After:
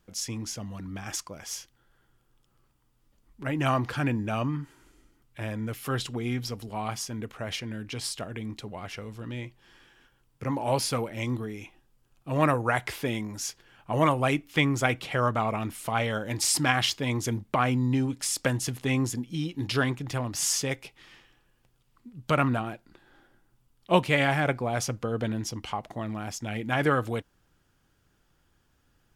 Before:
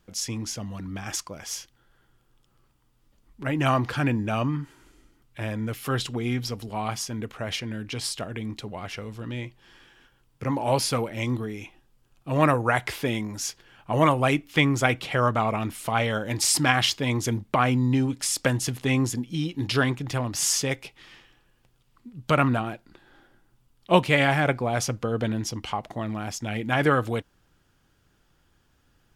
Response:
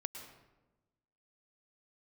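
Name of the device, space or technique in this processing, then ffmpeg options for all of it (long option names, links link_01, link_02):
exciter from parts: -filter_complex "[0:a]asplit=2[link_01][link_02];[link_02]highpass=2300,asoftclip=type=tanh:threshold=-32dB,highpass=3800,volume=-13.5dB[link_03];[link_01][link_03]amix=inputs=2:normalize=0,volume=-3dB"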